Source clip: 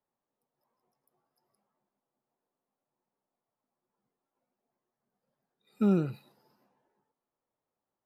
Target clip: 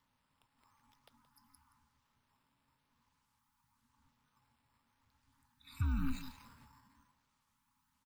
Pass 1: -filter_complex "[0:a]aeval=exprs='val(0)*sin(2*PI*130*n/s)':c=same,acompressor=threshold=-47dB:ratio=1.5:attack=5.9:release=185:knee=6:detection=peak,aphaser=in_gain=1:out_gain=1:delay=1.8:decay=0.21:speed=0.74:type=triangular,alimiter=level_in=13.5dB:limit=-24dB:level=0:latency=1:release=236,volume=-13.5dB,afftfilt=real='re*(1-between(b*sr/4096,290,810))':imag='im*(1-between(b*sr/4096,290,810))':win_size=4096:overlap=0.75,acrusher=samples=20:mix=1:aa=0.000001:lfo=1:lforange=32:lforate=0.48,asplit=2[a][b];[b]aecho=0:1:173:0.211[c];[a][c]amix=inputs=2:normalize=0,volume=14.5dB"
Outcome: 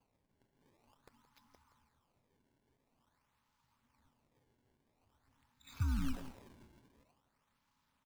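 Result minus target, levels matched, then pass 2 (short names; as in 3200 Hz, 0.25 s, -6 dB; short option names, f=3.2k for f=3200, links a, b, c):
compressor: peak gain reduction +9 dB; decimation with a swept rate: distortion +9 dB
-filter_complex "[0:a]aeval=exprs='val(0)*sin(2*PI*130*n/s)':c=same,aphaser=in_gain=1:out_gain=1:delay=1.8:decay=0.21:speed=0.74:type=triangular,alimiter=level_in=13.5dB:limit=-24dB:level=0:latency=1:release=236,volume=-13.5dB,afftfilt=real='re*(1-between(b*sr/4096,290,810))':imag='im*(1-between(b*sr/4096,290,810))':win_size=4096:overlap=0.75,acrusher=samples=4:mix=1:aa=0.000001:lfo=1:lforange=6.4:lforate=0.48,asplit=2[a][b];[b]aecho=0:1:173:0.211[c];[a][c]amix=inputs=2:normalize=0,volume=14.5dB"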